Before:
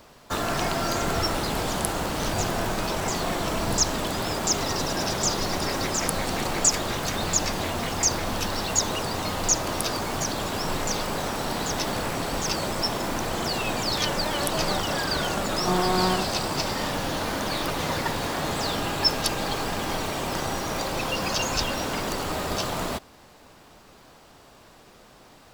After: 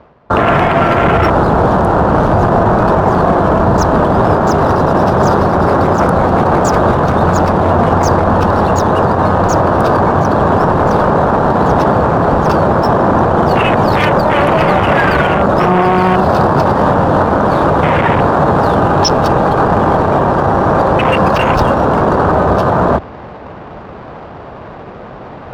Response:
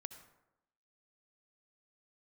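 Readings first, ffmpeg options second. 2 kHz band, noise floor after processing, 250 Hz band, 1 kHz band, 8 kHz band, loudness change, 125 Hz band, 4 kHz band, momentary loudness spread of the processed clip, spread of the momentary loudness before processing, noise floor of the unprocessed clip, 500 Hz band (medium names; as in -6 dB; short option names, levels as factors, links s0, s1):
+12.5 dB, -30 dBFS, +17.0 dB, +18.5 dB, -6.0 dB, +15.0 dB, +18.5 dB, 0.0 dB, 3 LU, 5 LU, -52 dBFS, +18.5 dB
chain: -af "aemphasis=mode=reproduction:type=50fm,adynamicsmooth=sensitivity=7.5:basefreq=1300,highpass=54,afwtdn=0.0282,areverse,acompressor=mode=upward:threshold=0.0178:ratio=2.5,areverse,equalizer=f=280:t=o:w=0.64:g=-4,alimiter=level_in=15:limit=0.891:release=50:level=0:latency=1,volume=0.891"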